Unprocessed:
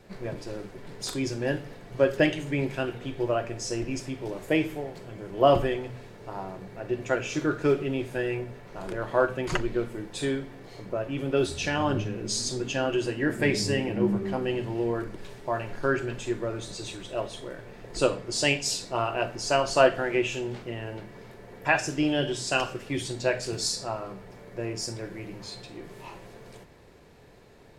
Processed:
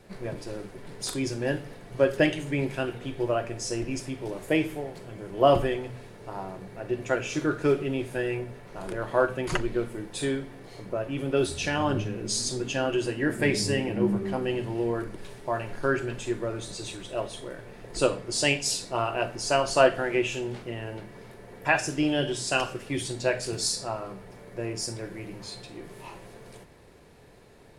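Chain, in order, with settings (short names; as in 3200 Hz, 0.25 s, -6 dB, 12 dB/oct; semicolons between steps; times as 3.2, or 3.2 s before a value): bell 9800 Hz +9 dB 0.27 oct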